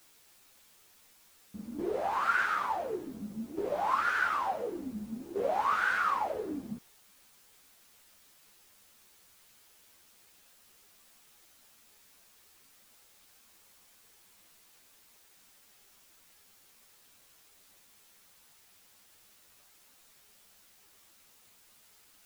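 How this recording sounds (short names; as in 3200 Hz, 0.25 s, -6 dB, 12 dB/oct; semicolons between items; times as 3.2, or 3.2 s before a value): tremolo saw down 0.56 Hz, depth 70%; a quantiser's noise floor 10-bit, dither triangular; a shimmering, thickened sound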